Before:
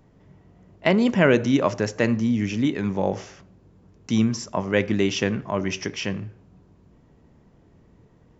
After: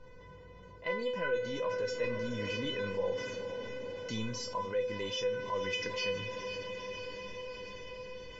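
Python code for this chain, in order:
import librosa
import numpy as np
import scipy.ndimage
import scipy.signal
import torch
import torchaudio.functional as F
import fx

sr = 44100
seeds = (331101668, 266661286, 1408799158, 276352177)

p1 = fx.high_shelf(x, sr, hz=5000.0, db=11.5)
p2 = np.clip(p1, -10.0 ** (-17.0 / 20.0), 10.0 ** (-17.0 / 20.0))
p3 = p1 + (p2 * 10.0 ** (-9.0 / 20.0))
p4 = fx.air_absorb(p3, sr, metres=210.0)
p5 = fx.comb_fb(p4, sr, f0_hz=500.0, decay_s=0.27, harmonics='all', damping=0.0, mix_pct=100)
p6 = fx.echo_diffused(p5, sr, ms=472, feedback_pct=64, wet_db=-14)
p7 = fx.rider(p6, sr, range_db=4, speed_s=0.5)
p8 = p7 + 10.0 ** (-23.5 / 20.0) * np.pad(p7, (int(155 * sr / 1000.0), 0))[:len(p7)]
y = fx.env_flatten(p8, sr, amount_pct=50)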